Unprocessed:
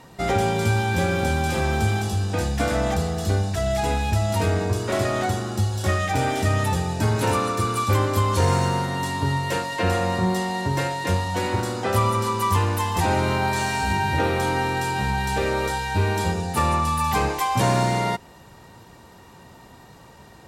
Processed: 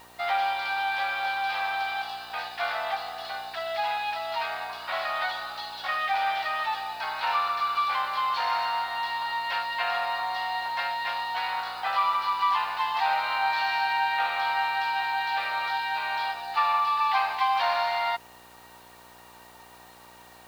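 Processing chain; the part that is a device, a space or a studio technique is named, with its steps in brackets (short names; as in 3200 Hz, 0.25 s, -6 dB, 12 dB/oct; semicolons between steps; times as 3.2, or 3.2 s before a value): 5.21–5.82 comb 3.3 ms, depth 82%; Chebyshev band-pass 730–4500 Hz, order 4; video cassette with head-switching buzz (buzz 60 Hz, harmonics 11, -58 dBFS 0 dB/oct; white noise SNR 29 dB)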